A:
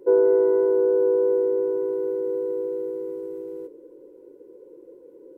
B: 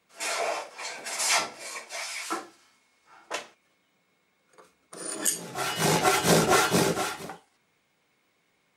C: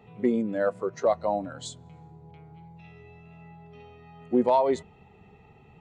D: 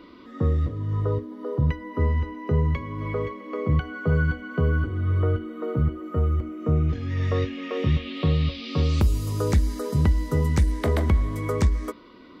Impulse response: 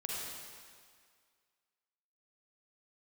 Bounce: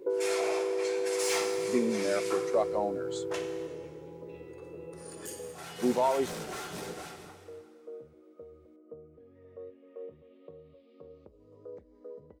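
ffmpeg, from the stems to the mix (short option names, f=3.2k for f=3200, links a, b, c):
-filter_complex "[0:a]acompressor=threshold=-32dB:ratio=3,volume=-0.5dB[a];[1:a]asoftclip=type=tanh:threshold=-21.5dB,volume=-8.5dB,afade=t=out:st=4.41:d=0.41:silence=0.354813,asplit=2[b][c];[c]volume=-3.5dB[d];[2:a]adelay=1500,volume=-5dB[e];[3:a]alimiter=limit=-19dB:level=0:latency=1,bandpass=f=500:t=q:w=4.1:csg=0,adelay=2250,volume=-10.5dB[f];[4:a]atrim=start_sample=2205[g];[d][g]afir=irnorm=-1:irlink=0[h];[a][b][e][f][h]amix=inputs=5:normalize=0"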